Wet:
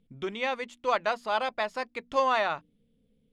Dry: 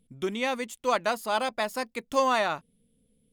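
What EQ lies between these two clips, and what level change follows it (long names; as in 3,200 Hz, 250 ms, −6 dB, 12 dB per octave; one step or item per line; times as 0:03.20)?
low-pass filter 3,900 Hz 12 dB per octave
mains-hum notches 60/120/180/240/300 Hz
dynamic equaliser 240 Hz, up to −7 dB, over −45 dBFS, Q 1.1
0.0 dB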